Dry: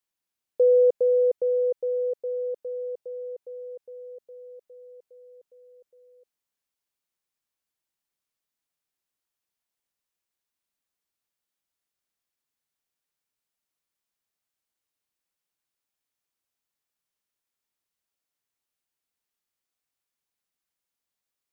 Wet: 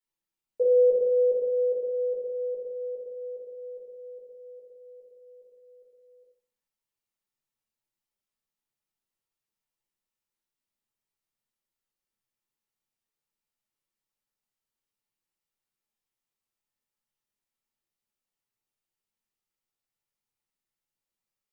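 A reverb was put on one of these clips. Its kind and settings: shoebox room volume 310 m³, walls furnished, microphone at 4.4 m; gain -11 dB

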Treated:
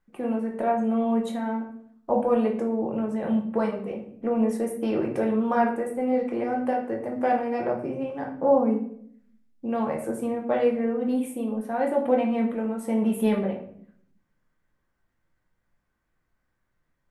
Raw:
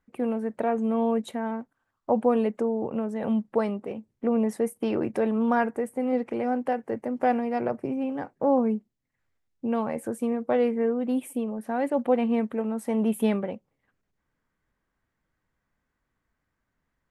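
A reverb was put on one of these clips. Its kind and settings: shoebox room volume 99 m³, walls mixed, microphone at 0.8 m; gain -2 dB

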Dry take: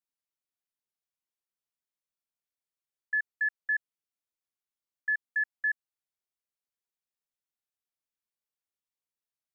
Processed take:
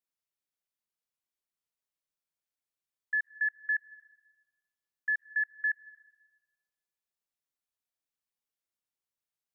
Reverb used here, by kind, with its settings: digital reverb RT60 1.2 s, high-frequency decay 0.8×, pre-delay 0.1 s, DRR 19.5 dB; gain -1 dB

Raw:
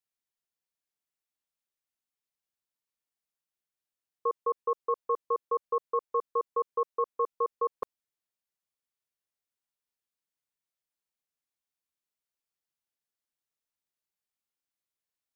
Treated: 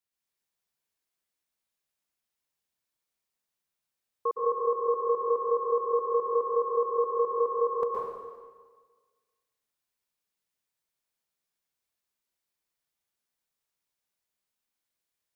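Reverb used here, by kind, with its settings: plate-style reverb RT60 1.5 s, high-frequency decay 0.95×, pre-delay 0.105 s, DRR -4 dB

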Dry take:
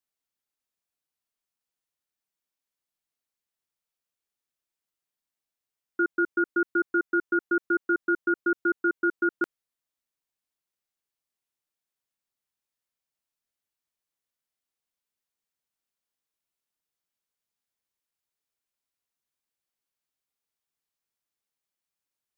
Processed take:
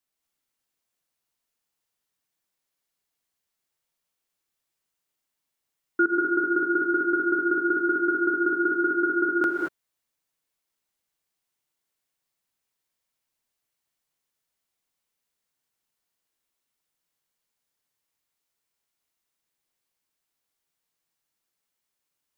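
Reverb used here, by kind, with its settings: non-linear reverb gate 0.25 s rising, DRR 0 dB; gain +3.5 dB

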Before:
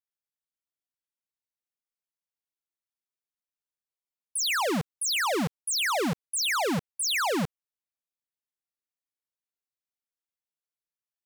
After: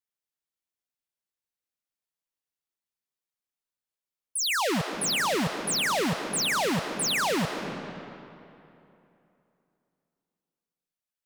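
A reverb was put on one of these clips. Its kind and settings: digital reverb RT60 2.9 s, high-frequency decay 0.7×, pre-delay 0.11 s, DRR 6 dB

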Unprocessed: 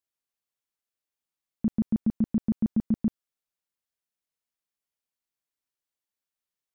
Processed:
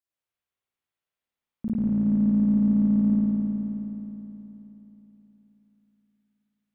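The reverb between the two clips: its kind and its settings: spring tank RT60 3.6 s, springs 53 ms, chirp 65 ms, DRR -9.5 dB; gain -5.5 dB

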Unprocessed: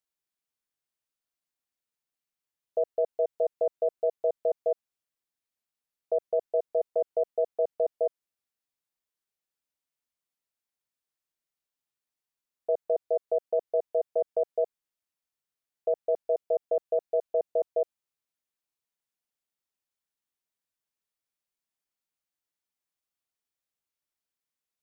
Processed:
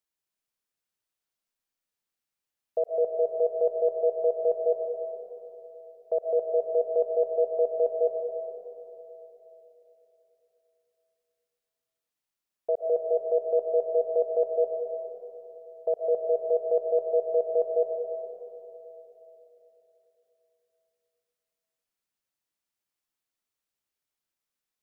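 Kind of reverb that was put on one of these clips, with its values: digital reverb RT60 3.6 s, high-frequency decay 0.9×, pre-delay 80 ms, DRR 2 dB

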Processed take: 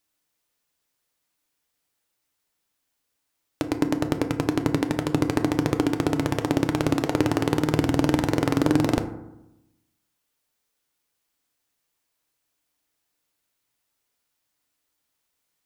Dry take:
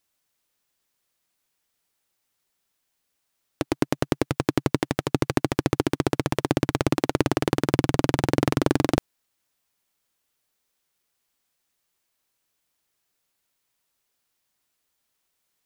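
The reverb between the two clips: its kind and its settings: FDN reverb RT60 0.9 s, low-frequency decay 1.25×, high-frequency decay 0.4×, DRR 6.5 dB; gain -1.5 dB

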